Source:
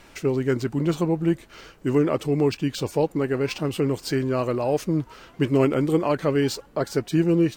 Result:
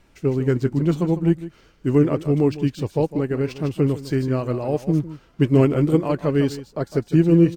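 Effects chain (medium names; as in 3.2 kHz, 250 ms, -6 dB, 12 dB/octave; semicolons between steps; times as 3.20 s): bass shelf 280 Hz +10 dB; on a send: delay 154 ms -10.5 dB; on the sum: upward expansion 1.5:1, over -34 dBFS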